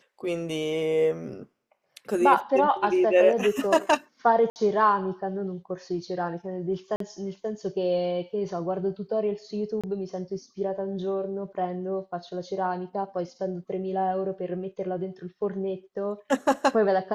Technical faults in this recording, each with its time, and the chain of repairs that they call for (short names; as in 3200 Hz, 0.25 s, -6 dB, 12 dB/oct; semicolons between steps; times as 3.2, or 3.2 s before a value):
4.5–4.56 gap 59 ms
6.96–7 gap 43 ms
9.81–9.84 gap 26 ms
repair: interpolate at 4.5, 59 ms; interpolate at 6.96, 43 ms; interpolate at 9.81, 26 ms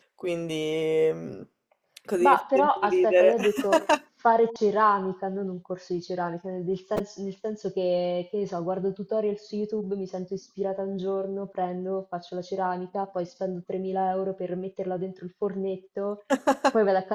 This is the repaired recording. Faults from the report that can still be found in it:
none